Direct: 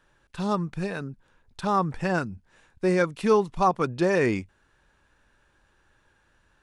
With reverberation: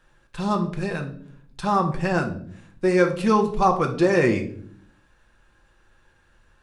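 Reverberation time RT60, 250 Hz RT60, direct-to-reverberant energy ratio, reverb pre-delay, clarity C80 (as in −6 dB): 0.55 s, 0.90 s, 2.5 dB, 4 ms, 15.0 dB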